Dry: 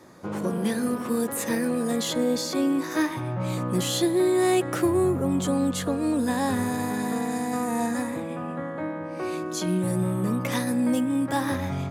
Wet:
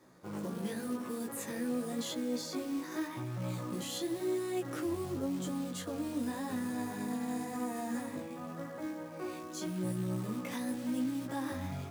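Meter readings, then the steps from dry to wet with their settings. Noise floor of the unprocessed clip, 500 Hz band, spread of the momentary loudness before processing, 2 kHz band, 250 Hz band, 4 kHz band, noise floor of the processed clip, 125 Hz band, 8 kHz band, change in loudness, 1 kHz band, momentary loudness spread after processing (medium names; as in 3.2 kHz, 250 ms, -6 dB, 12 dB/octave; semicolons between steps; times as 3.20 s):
-34 dBFS, -13.0 dB, 8 LU, -12.5 dB, -11.0 dB, -11.5 dB, -44 dBFS, -11.0 dB, -11.5 dB, -11.5 dB, -12.5 dB, 6 LU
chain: dynamic bell 290 Hz, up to +4 dB, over -35 dBFS, Q 2.8; peak limiter -17.5 dBFS, peak gain reduction 7 dB; short-mantissa float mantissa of 2-bit; chorus 0.9 Hz, delay 15.5 ms, depth 5.2 ms; trim -8 dB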